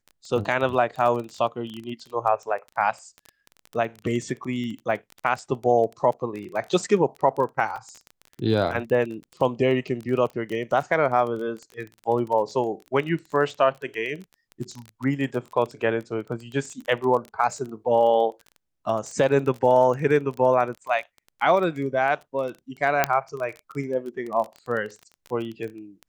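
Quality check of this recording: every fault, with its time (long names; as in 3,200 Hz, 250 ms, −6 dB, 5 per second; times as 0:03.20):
surface crackle 21 per second −30 dBFS
0:07.76: drop-out 3.9 ms
0:12.49: drop-out 3.5 ms
0:23.04: click −4 dBFS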